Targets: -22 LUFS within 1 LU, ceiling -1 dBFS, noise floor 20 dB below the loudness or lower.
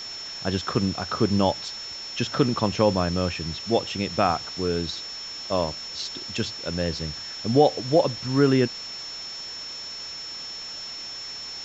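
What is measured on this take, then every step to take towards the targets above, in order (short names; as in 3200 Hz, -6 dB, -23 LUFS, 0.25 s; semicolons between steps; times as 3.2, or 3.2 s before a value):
steady tone 5400 Hz; tone level -34 dBFS; noise floor -36 dBFS; noise floor target -46 dBFS; loudness -26.0 LUFS; peak -5.5 dBFS; loudness target -22.0 LUFS
-> notch 5400 Hz, Q 30; denoiser 10 dB, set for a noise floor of -36 dBFS; gain +4 dB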